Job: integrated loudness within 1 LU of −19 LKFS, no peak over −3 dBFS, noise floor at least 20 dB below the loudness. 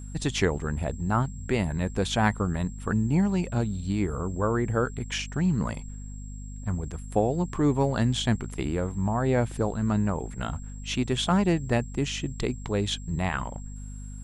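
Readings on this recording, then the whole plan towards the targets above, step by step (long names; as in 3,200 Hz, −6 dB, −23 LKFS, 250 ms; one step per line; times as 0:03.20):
mains hum 50 Hz; hum harmonics up to 250 Hz; level of the hum −36 dBFS; interfering tone 7,600 Hz; level of the tone −50 dBFS; integrated loudness −27.5 LKFS; sample peak −9.0 dBFS; target loudness −19.0 LKFS
→ hum removal 50 Hz, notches 5
notch filter 7,600 Hz, Q 30
level +8.5 dB
brickwall limiter −3 dBFS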